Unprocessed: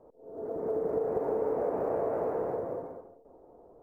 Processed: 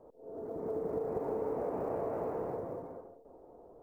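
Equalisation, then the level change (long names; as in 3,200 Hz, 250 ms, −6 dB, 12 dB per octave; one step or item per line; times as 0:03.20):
dynamic equaliser 1,600 Hz, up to −5 dB, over −54 dBFS, Q 1.9
dynamic equaliser 530 Hz, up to −6 dB, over −43 dBFS, Q 0.97
0.0 dB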